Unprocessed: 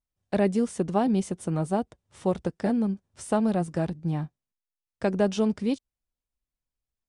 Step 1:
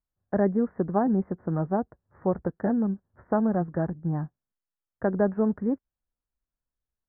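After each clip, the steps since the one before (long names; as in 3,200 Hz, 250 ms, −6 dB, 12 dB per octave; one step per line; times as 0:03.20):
Butterworth low-pass 1,800 Hz 72 dB per octave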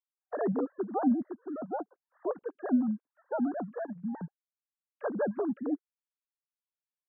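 three sine waves on the formant tracks
level −6 dB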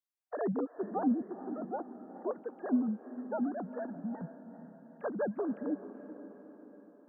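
feedback delay with all-pass diffusion 450 ms, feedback 55%, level −12.5 dB
level −3 dB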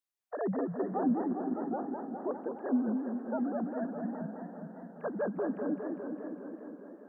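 feedback echo with a swinging delay time 203 ms, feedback 73%, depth 163 cents, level −5.5 dB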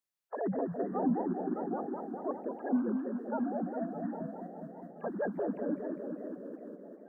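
spectral magnitudes quantised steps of 30 dB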